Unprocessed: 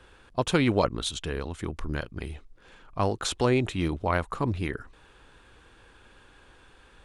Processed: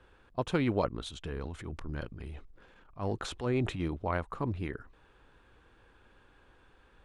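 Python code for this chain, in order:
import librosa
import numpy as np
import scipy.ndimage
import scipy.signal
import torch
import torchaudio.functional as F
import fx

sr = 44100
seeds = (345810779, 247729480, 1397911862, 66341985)

y = fx.high_shelf(x, sr, hz=3500.0, db=-11.0)
y = fx.transient(y, sr, attack_db=-9, sustain_db=7, at=(1.25, 3.8))
y = y * 10.0 ** (-5.5 / 20.0)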